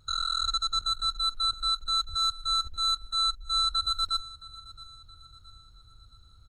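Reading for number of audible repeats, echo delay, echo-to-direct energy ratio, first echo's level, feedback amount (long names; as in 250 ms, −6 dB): 3, 669 ms, −18.0 dB, −19.0 dB, 46%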